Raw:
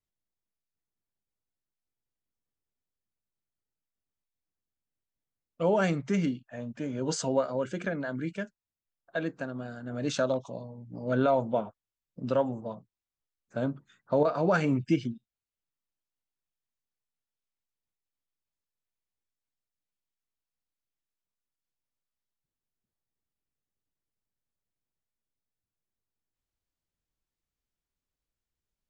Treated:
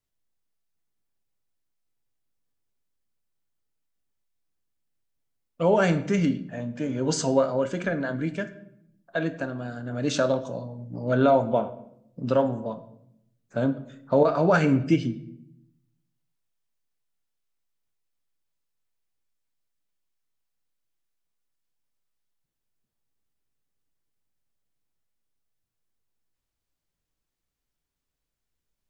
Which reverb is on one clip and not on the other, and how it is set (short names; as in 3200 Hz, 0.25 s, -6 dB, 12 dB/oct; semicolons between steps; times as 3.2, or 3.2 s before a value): shoebox room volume 180 m³, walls mixed, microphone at 0.31 m; gain +4.5 dB